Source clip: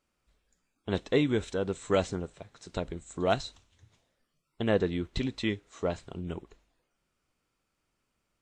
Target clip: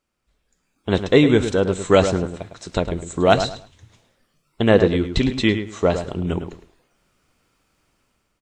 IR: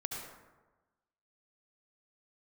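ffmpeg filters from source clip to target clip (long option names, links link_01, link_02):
-filter_complex "[0:a]dynaudnorm=framelen=270:gausssize=5:maxgain=12.5dB,asplit=2[link_01][link_02];[link_02]adelay=106,lowpass=frequency=2700:poles=1,volume=-9dB,asplit=2[link_03][link_04];[link_04]adelay=106,lowpass=frequency=2700:poles=1,volume=0.25,asplit=2[link_05][link_06];[link_06]adelay=106,lowpass=frequency=2700:poles=1,volume=0.25[link_07];[link_01][link_03][link_05][link_07]amix=inputs=4:normalize=0,volume=1dB"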